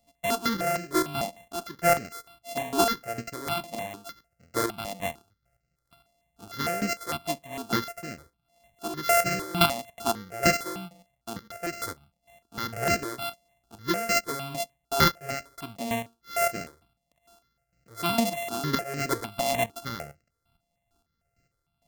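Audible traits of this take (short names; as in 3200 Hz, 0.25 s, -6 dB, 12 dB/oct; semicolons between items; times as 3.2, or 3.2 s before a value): a buzz of ramps at a fixed pitch in blocks of 64 samples; chopped level 2.2 Hz, depth 65%, duty 25%; notches that jump at a steady rate 6.6 Hz 390–3500 Hz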